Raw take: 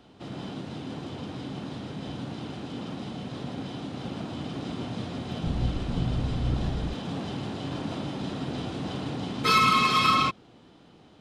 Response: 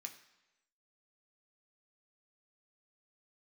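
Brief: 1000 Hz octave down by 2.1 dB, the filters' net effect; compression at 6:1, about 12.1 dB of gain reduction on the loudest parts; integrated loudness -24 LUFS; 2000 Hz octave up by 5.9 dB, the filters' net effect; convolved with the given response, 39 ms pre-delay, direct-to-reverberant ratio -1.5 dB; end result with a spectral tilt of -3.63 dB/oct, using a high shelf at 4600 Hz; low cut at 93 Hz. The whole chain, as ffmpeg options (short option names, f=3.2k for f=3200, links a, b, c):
-filter_complex "[0:a]highpass=93,equalizer=f=1k:t=o:g=-6.5,equalizer=f=2k:t=o:g=7.5,highshelf=f=4.6k:g=5,acompressor=threshold=-29dB:ratio=6,asplit=2[a][b];[1:a]atrim=start_sample=2205,adelay=39[c];[b][c]afir=irnorm=-1:irlink=0,volume=6dB[d];[a][d]amix=inputs=2:normalize=0,volume=7.5dB"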